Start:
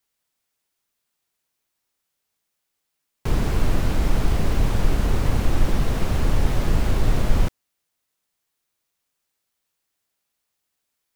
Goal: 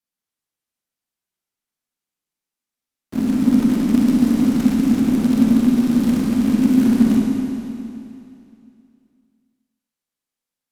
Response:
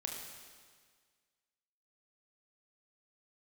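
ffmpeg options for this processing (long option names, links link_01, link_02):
-filter_complex "[0:a]lowshelf=frequency=62:gain=11,acrusher=bits=4:mode=log:mix=0:aa=0.000001,aeval=exprs='val(0)*sin(2*PI*270*n/s)':channel_layout=same,afreqshift=-38[link_01];[1:a]atrim=start_sample=2205,asetrate=27342,aresample=44100[link_02];[link_01][link_02]afir=irnorm=-1:irlink=0,asetrate=45938,aresample=44100,volume=-8dB"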